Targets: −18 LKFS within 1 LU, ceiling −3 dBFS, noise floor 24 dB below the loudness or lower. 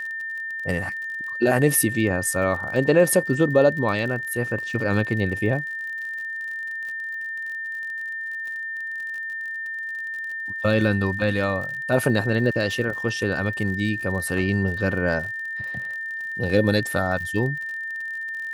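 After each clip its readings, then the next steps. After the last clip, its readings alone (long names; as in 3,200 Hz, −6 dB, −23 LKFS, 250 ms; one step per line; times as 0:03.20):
crackle rate 48 per second; interfering tone 1,800 Hz; level of the tone −28 dBFS; integrated loudness −24.0 LKFS; sample peak −5.0 dBFS; target loudness −18.0 LKFS
→ click removal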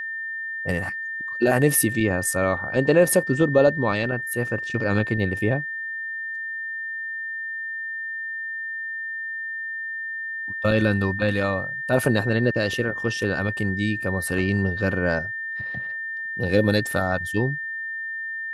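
crackle rate 0.054 per second; interfering tone 1,800 Hz; level of the tone −28 dBFS
→ notch filter 1,800 Hz, Q 30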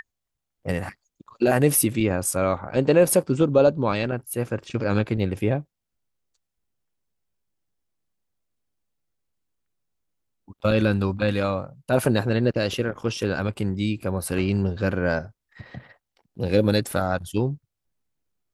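interfering tone none found; integrated loudness −23.5 LKFS; sample peak −5.5 dBFS; target loudness −18.0 LKFS
→ level +5.5 dB
brickwall limiter −3 dBFS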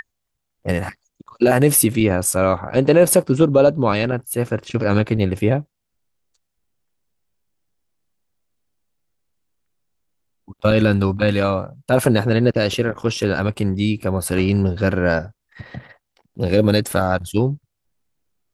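integrated loudness −18.5 LKFS; sample peak −3.0 dBFS; background noise floor −77 dBFS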